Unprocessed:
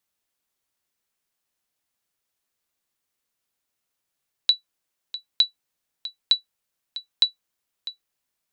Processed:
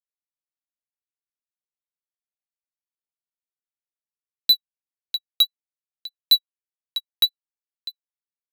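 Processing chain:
rotating-speaker cabinet horn 5 Hz
leveller curve on the samples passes 5
expander for the loud parts 2.5 to 1, over −21 dBFS

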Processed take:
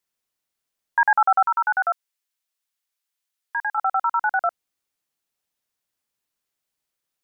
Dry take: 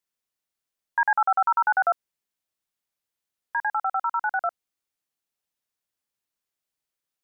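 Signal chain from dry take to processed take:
0:01.47–0:03.78: high-pass filter 1,400 Hz 6 dB per octave
level +4 dB

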